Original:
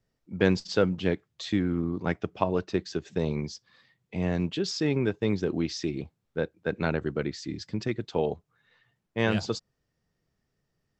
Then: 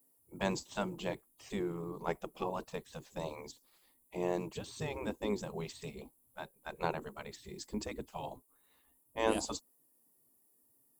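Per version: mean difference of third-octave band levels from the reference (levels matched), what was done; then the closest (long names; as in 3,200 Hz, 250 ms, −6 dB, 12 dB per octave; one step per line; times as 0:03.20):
9.0 dB: pitch vibrato 2.8 Hz 30 cents
drawn EQ curve 120 Hz 0 dB, 180 Hz −30 dB, 260 Hz −2 dB, 380 Hz −15 dB, 690 Hz −16 dB, 990 Hz −11 dB, 1,500 Hz −26 dB, 2,400 Hz −22 dB, 5,700 Hz −18 dB, 10,000 Hz +12 dB
gate on every frequency bin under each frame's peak −15 dB weak
level +14 dB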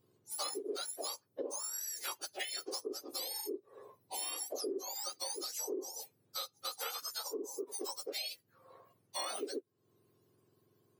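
21.5 dB: frequency axis turned over on the octave scale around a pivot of 1,400 Hz
parametric band 410 Hz +7.5 dB 0.72 octaves
downward compressor 5 to 1, threshold −44 dBFS, peak gain reduction 22 dB
level +5 dB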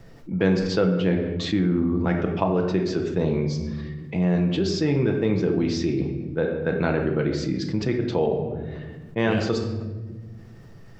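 5.5 dB: high-shelf EQ 3,600 Hz −10 dB
rectangular room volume 350 cubic metres, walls mixed, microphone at 0.72 metres
envelope flattener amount 50%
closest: third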